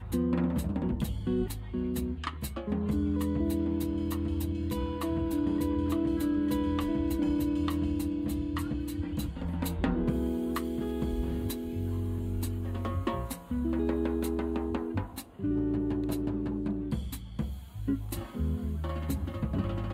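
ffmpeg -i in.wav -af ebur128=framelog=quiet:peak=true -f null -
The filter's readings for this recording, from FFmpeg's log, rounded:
Integrated loudness:
  I:         -32.0 LUFS
  Threshold: -42.0 LUFS
Loudness range:
  LRA:         3.6 LU
  Threshold: -51.9 LUFS
  LRA low:   -33.5 LUFS
  LRA high:  -29.9 LUFS
True peak:
  Peak:      -14.6 dBFS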